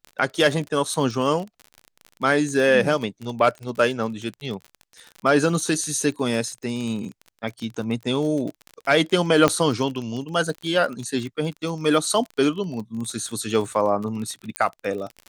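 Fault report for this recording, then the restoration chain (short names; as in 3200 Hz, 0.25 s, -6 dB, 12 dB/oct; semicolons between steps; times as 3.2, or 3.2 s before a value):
crackle 36/s -29 dBFS
9.48 pop -5 dBFS
14.56 pop -9 dBFS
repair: de-click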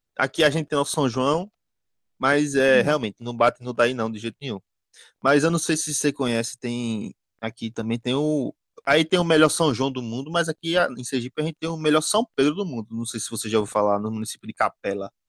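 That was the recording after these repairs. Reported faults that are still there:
9.48 pop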